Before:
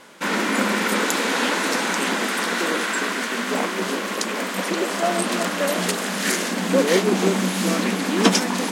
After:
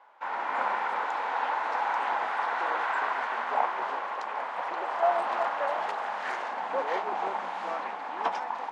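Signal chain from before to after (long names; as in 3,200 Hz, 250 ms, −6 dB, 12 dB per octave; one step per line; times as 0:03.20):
automatic gain control gain up to 9 dB
four-pole ladder band-pass 920 Hz, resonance 65%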